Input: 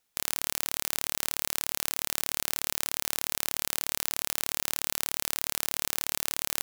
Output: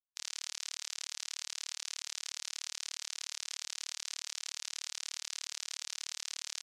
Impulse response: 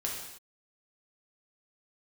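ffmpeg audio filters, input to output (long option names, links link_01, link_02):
-filter_complex "[0:a]lowpass=frequency=6200:width=0.5412,lowpass=frequency=6200:width=1.3066,afftfilt=real='re*gte(hypot(re,im),0.000398)':imag='im*gte(hypot(re,im),0.000398)':win_size=1024:overlap=0.75,aderivative,alimiter=level_in=6dB:limit=-24dB:level=0:latency=1:release=14,volume=-6dB,asplit=2[link_01][link_02];[link_02]adelay=23,volume=-5dB[link_03];[link_01][link_03]amix=inputs=2:normalize=0,volume=10.5dB"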